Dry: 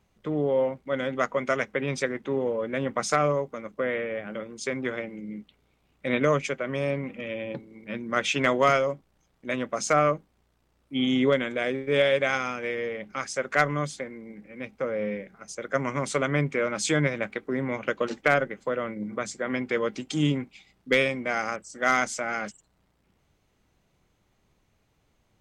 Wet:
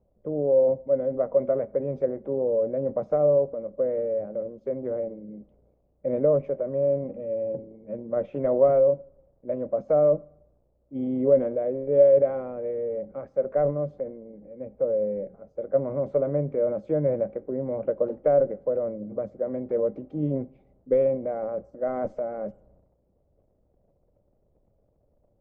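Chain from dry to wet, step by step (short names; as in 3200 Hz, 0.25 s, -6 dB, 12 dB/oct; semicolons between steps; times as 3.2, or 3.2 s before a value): low shelf 110 Hz +11 dB; transient shaper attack +1 dB, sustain +7 dB, from 21.57 s sustain +12 dB; synth low-pass 570 Hz, resonance Q 4.9; reverb RT60 0.75 s, pre-delay 3 ms, DRR 20 dB; gain -8 dB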